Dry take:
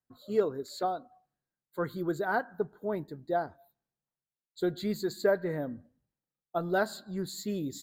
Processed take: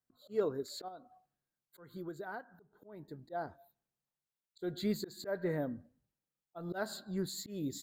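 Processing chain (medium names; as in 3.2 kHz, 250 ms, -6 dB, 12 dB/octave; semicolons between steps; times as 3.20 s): 0.88–3.30 s: compression 5:1, threshold -40 dBFS, peak gain reduction 14.5 dB; slow attack 196 ms; trim -1.5 dB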